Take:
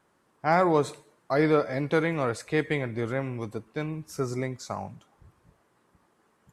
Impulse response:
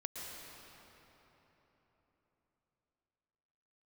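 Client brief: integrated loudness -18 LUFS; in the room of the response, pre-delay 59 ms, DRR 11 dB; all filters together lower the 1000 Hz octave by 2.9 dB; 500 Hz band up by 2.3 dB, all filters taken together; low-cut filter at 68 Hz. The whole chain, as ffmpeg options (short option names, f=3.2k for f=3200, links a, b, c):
-filter_complex "[0:a]highpass=68,equalizer=f=500:t=o:g=4,equalizer=f=1k:t=o:g=-6,asplit=2[a][b];[1:a]atrim=start_sample=2205,adelay=59[c];[b][c]afir=irnorm=-1:irlink=0,volume=-11dB[d];[a][d]amix=inputs=2:normalize=0,volume=8.5dB"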